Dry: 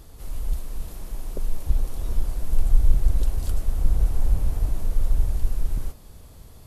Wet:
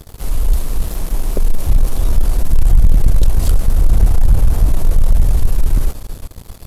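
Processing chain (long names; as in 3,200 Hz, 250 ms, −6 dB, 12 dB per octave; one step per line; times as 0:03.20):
echo machine with several playback heads 132 ms, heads second and third, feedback 54%, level −22 dB
leveller curve on the samples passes 3
level +2.5 dB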